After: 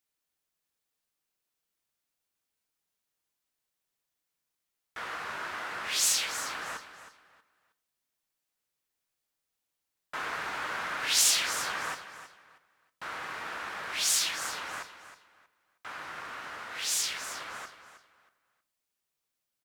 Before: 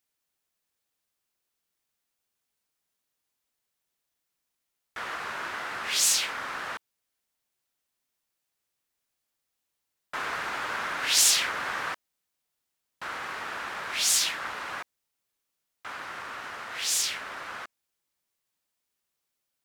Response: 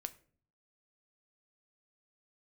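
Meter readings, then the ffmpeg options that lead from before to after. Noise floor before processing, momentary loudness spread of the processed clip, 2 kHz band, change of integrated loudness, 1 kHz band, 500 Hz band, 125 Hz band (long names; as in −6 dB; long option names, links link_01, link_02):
−83 dBFS, 19 LU, −2.5 dB, −3.0 dB, −2.5 dB, −2.5 dB, −2.0 dB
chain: -filter_complex "[0:a]aecho=1:1:317|634|951:0.237|0.0617|0.016[link_01];[1:a]atrim=start_sample=2205[link_02];[link_01][link_02]afir=irnorm=-1:irlink=0"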